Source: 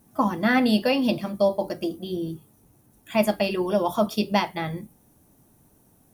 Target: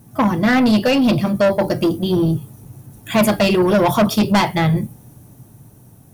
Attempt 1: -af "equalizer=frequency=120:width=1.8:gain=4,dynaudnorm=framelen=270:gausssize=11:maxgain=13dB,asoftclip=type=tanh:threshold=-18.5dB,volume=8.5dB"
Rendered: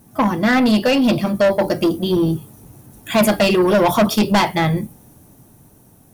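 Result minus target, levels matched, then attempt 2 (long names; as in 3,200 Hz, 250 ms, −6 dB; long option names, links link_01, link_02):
125 Hz band −2.5 dB
-af "equalizer=frequency=120:width=1.8:gain=13.5,dynaudnorm=framelen=270:gausssize=11:maxgain=13dB,asoftclip=type=tanh:threshold=-18.5dB,volume=8.5dB"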